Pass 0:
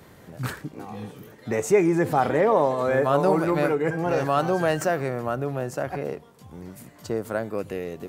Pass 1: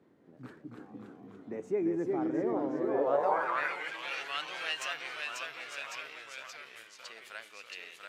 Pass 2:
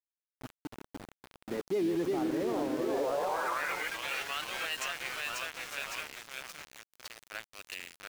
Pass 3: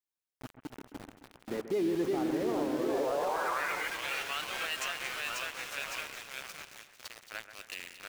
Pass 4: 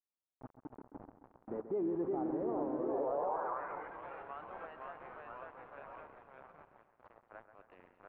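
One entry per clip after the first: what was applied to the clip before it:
delay with pitch and tempo change per echo 255 ms, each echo −1 semitone, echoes 3; band-pass filter sweep 290 Hz → 2,900 Hz, 0:02.85–0:03.86; tilt shelving filter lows −7.5 dB; level −2 dB
brickwall limiter −27.5 dBFS, peak gain reduction 10 dB; centre clipping without the shift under −42 dBFS; level +3.5 dB
echo with a time of its own for lows and highs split 2,500 Hz, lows 133 ms, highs 226 ms, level −11 dB
transistor ladder low-pass 1,200 Hz, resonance 30%; level +1 dB

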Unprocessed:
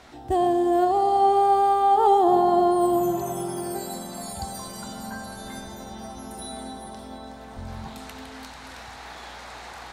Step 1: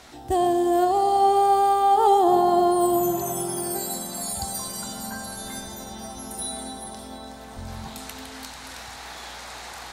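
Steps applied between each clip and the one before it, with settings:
high-shelf EQ 4,400 Hz +10.5 dB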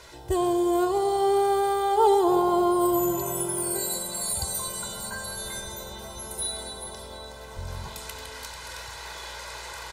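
comb filter 2 ms, depth 82%
level −2 dB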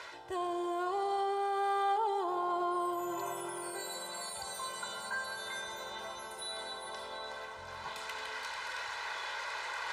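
brickwall limiter −20 dBFS, peak gain reduction 10.5 dB
reversed playback
upward compression, threshold −30 dBFS
reversed playback
resonant band-pass 1,500 Hz, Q 0.8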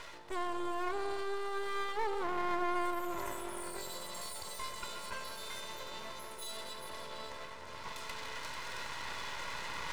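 notch comb filter 770 Hz
half-wave rectification
level +3.5 dB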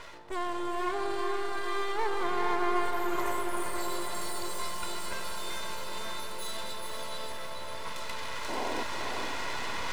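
sound drawn into the spectrogram noise, 0:08.48–0:08.84, 210–1,100 Hz −39 dBFS
feedback delay with all-pass diffusion 488 ms, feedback 62%, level −4 dB
one half of a high-frequency compander decoder only
level +3.5 dB

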